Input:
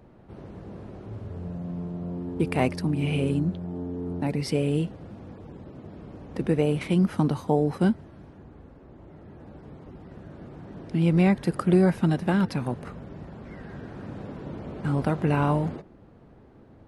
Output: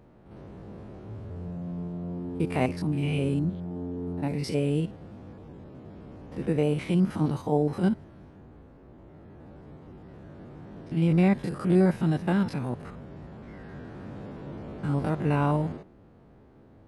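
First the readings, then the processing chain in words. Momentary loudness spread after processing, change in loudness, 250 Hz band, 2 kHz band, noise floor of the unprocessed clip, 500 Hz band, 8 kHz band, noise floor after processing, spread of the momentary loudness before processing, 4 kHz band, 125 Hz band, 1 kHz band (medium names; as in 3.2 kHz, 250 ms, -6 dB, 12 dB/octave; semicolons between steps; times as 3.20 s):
21 LU, -1.5 dB, -1.5 dB, -3.0 dB, -52 dBFS, -2.0 dB, no reading, -54 dBFS, 21 LU, -3.0 dB, -1.5 dB, -2.5 dB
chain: spectrogram pixelated in time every 50 ms; trim -1 dB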